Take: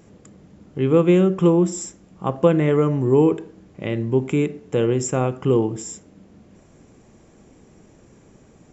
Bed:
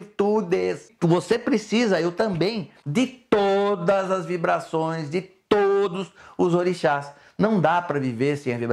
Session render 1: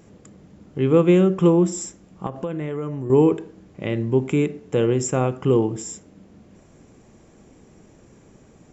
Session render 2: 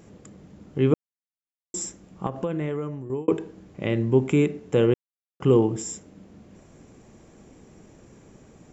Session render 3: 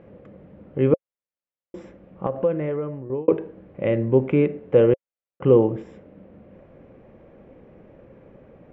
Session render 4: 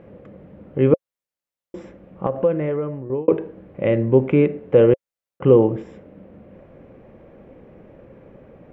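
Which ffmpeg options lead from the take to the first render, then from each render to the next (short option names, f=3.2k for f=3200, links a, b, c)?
-filter_complex "[0:a]asettb=1/sr,asplit=3[a][b][c];[a]atrim=end=2.264[d];[b]atrim=start=2.26:end=3.1,asetpts=PTS-STARTPTS,afade=t=in:d=0.004:c=qsin,afade=t=out:st=0.836:d=0.004:c=qsin,acompressor=threshold=-26dB:ratio=4:attack=3.2:release=140:knee=1:detection=peak[e];[c]atrim=start=3.096[f];[d][e]acrossfade=d=0.004:c1=hsin:c2=qsin[g];[g][f]acrossfade=d=0.004:c1=qsin:c2=hsin"
-filter_complex "[0:a]asplit=6[a][b][c][d][e][f];[a]atrim=end=0.94,asetpts=PTS-STARTPTS,afade=t=out:st=0.936:d=0.004:c=hsin[g];[b]atrim=start=0.94:end=1.74,asetpts=PTS-STARTPTS,volume=0[h];[c]atrim=start=1.74:end=3.28,asetpts=PTS-STARTPTS,afade=t=in:d=0.004:c=hsin,afade=t=out:st=0.95:d=0.59[i];[d]atrim=start=3.28:end=4.94,asetpts=PTS-STARTPTS,afade=t=in:d=0.004:c=hsin,afade=t=out:st=1.656:d=0.004:c=hsin[j];[e]atrim=start=4.94:end=5.4,asetpts=PTS-STARTPTS,volume=0[k];[f]atrim=start=5.4,asetpts=PTS-STARTPTS,afade=t=in:d=0.004:c=hsin[l];[g][h][i][j][k][l]concat=n=6:v=0:a=1"
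-af "lowpass=f=2.6k:w=0.5412,lowpass=f=2.6k:w=1.3066,equalizer=f=540:w=4.3:g=12.5"
-af "volume=3dB,alimiter=limit=-3dB:level=0:latency=1"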